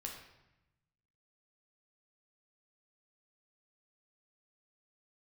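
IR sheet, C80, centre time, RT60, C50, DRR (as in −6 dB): 7.0 dB, 37 ms, 0.90 s, 4.5 dB, −0.5 dB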